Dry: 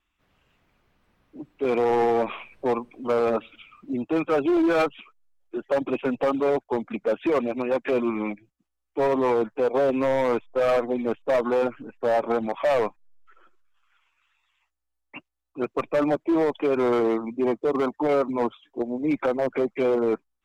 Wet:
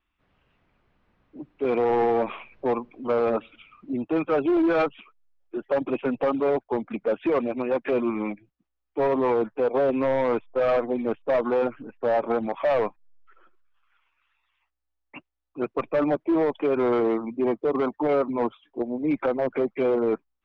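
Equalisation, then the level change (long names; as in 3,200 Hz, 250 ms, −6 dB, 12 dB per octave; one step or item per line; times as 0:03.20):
high-frequency loss of the air 190 metres
0.0 dB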